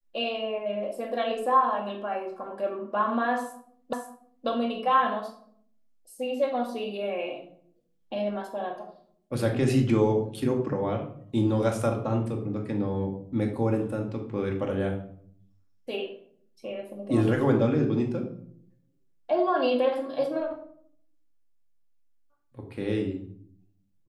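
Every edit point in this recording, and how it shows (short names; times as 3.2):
3.93 repeat of the last 0.54 s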